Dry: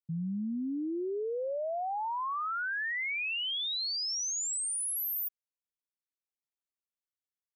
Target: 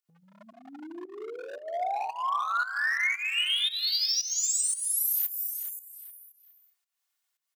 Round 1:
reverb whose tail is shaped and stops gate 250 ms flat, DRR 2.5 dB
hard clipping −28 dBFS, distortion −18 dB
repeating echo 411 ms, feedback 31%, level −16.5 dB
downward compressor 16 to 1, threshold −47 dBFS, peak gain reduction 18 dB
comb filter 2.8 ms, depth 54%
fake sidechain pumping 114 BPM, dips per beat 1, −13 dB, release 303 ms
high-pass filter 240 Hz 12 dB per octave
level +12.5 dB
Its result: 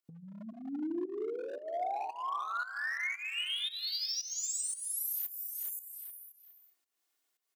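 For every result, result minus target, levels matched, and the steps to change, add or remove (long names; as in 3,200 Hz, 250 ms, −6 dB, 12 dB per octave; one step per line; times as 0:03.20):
250 Hz band +15.5 dB; downward compressor: peak gain reduction +8.5 dB
change: high-pass filter 810 Hz 12 dB per octave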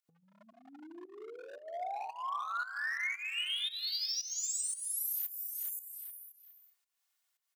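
downward compressor: peak gain reduction +8.5 dB
change: downward compressor 16 to 1, threshold −38 dBFS, peak gain reduction 9.5 dB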